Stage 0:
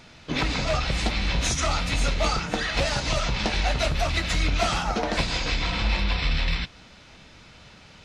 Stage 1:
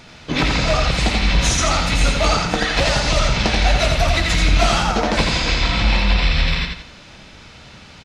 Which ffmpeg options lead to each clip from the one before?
ffmpeg -i in.wav -af "aecho=1:1:85|170|255|340:0.631|0.221|0.0773|0.0271,volume=6dB" out.wav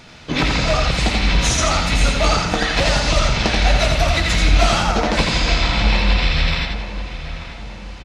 ffmpeg -i in.wav -filter_complex "[0:a]asplit=2[link_01][link_02];[link_02]adelay=887,lowpass=frequency=2500:poles=1,volume=-11.5dB,asplit=2[link_03][link_04];[link_04]adelay=887,lowpass=frequency=2500:poles=1,volume=0.47,asplit=2[link_05][link_06];[link_06]adelay=887,lowpass=frequency=2500:poles=1,volume=0.47,asplit=2[link_07][link_08];[link_08]adelay=887,lowpass=frequency=2500:poles=1,volume=0.47,asplit=2[link_09][link_10];[link_10]adelay=887,lowpass=frequency=2500:poles=1,volume=0.47[link_11];[link_01][link_03][link_05][link_07][link_09][link_11]amix=inputs=6:normalize=0" out.wav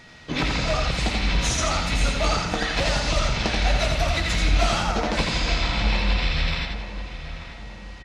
ffmpeg -i in.wav -af "aeval=exprs='val(0)+0.00631*sin(2*PI*1900*n/s)':channel_layout=same,volume=-6dB" out.wav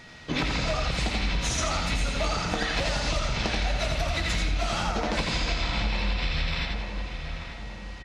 ffmpeg -i in.wav -af "acompressor=threshold=-23dB:ratio=6" out.wav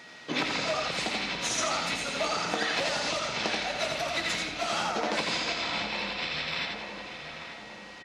ffmpeg -i in.wav -af "highpass=270" out.wav

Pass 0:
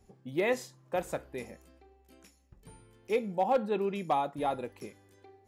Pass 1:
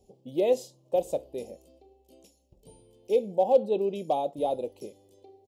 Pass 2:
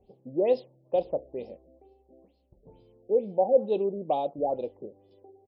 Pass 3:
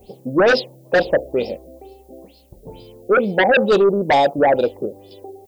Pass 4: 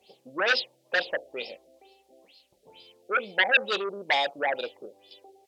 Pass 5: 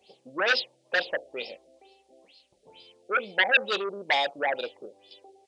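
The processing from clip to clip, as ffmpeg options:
ffmpeg -i in.wav -af "firequalizer=gain_entry='entry(120,0);entry(560,12);entry(1500,-25);entry(2900,4)':delay=0.05:min_phase=1,volume=-3.5dB" out.wav
ffmpeg -i in.wav -af "afftfilt=real='re*lt(b*sr/1024,740*pow(5500/740,0.5+0.5*sin(2*PI*2.2*pts/sr)))':imag='im*lt(b*sr/1024,740*pow(5500/740,0.5+0.5*sin(2*PI*2.2*pts/sr)))':win_size=1024:overlap=0.75" out.wav
ffmpeg -i in.wav -af "crystalizer=i=5.5:c=0,aeval=exprs='0.335*sin(PI/2*3.98*val(0)/0.335)':channel_layout=same" out.wav
ffmpeg -i in.wav -af "bandpass=frequency=3000:width_type=q:width=1.1:csg=0" out.wav
ffmpeg -i in.wav -af "aresample=22050,aresample=44100" out.wav

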